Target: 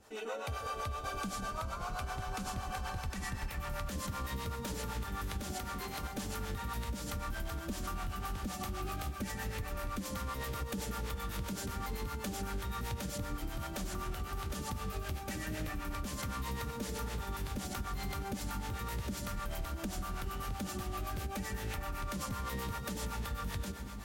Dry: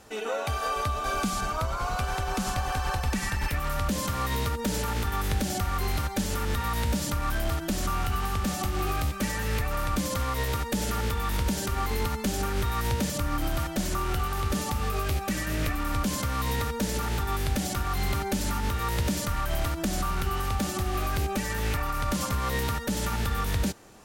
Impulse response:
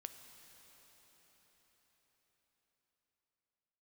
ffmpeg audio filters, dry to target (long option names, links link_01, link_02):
-filter_complex "[0:a]asettb=1/sr,asplit=3[link_01][link_02][link_03];[link_01]atrim=end=5.554[link_04];[link_02]atrim=start=5.55:end=6.03,asetpts=PTS-STARTPTS,afade=type=in:duration=0.004:curve=qsin,afade=type=out:start_time=0.476:duration=0.004:curve=qsin,highpass=180[link_05];[link_03]atrim=start=6.026[link_06];[link_04][link_05]acrossfade=duration=0.004:curve1=hsin:curve2=qsin[link_07];[link_07][link_06]acrossfade=duration=0.004:curve1=qsin:curve2=hsin[link_08];[1:a]atrim=start_sample=2205[link_09];[link_08][link_09]afir=irnorm=-1:irlink=0,acrossover=split=470[link_10][link_11];[link_10]aeval=exprs='val(0)*(1-0.7/2+0.7/2*cos(2*PI*7.8*n/s))':channel_layout=same[link_12];[link_11]aeval=exprs='val(0)*(1-0.7/2-0.7/2*cos(2*PI*7.8*n/s))':channel_layout=same[link_13];[link_12][link_13]amix=inputs=2:normalize=0,acompressor=threshold=-34dB:ratio=6"